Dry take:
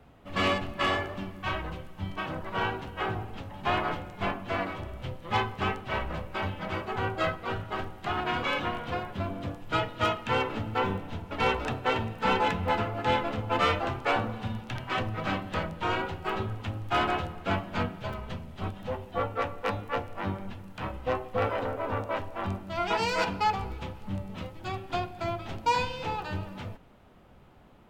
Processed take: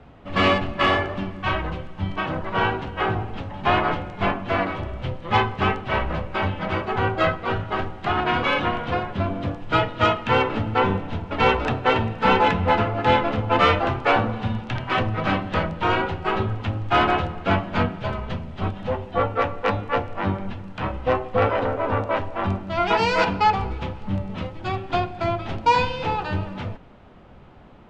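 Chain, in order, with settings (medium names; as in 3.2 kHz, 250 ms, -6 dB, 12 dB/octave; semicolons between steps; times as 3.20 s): distance through air 110 m; trim +8.5 dB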